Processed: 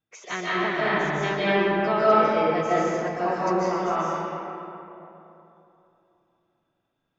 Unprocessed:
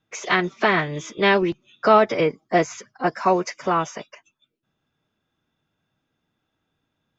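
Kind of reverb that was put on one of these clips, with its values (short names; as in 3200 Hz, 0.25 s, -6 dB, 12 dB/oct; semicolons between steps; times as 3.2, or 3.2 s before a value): digital reverb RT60 3.1 s, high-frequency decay 0.5×, pre-delay 0.11 s, DRR -8.5 dB; gain -12 dB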